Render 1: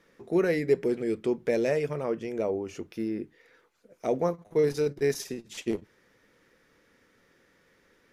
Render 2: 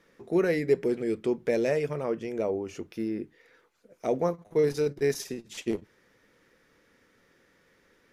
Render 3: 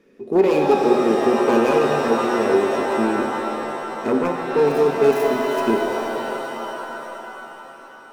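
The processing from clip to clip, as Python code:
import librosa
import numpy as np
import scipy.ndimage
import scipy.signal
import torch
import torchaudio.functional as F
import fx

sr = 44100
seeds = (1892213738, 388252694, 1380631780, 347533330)

y1 = x
y2 = fx.self_delay(y1, sr, depth_ms=0.77)
y2 = fx.small_body(y2, sr, hz=(260.0, 390.0, 2500.0), ring_ms=45, db=16)
y2 = fx.rev_shimmer(y2, sr, seeds[0], rt60_s=3.8, semitones=7, shimmer_db=-2, drr_db=2.5)
y2 = y2 * 10.0 ** (-1.5 / 20.0)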